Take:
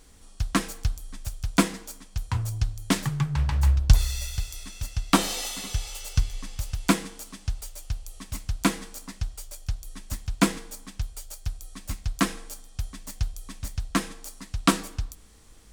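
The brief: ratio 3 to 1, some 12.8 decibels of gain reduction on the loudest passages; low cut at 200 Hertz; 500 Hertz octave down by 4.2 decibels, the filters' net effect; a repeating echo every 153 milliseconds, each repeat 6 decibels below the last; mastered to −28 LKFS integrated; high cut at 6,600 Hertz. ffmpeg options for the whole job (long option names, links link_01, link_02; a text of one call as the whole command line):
ffmpeg -i in.wav -af "highpass=200,lowpass=6600,equalizer=frequency=500:width_type=o:gain=-6,acompressor=threshold=-35dB:ratio=3,aecho=1:1:153|306|459|612|765|918:0.501|0.251|0.125|0.0626|0.0313|0.0157,volume=12dB" out.wav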